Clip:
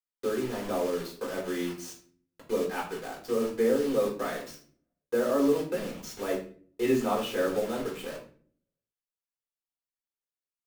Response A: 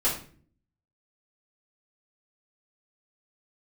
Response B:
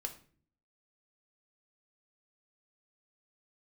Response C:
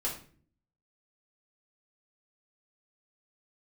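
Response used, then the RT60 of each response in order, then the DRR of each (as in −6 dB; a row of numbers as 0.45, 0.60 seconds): C; 0.45, 0.45, 0.45 seconds; −9.5, 4.5, −5.5 decibels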